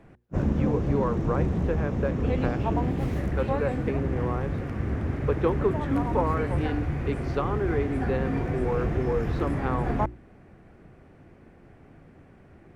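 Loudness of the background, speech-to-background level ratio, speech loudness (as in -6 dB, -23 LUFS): -29.0 LUFS, -2.0 dB, -31.0 LUFS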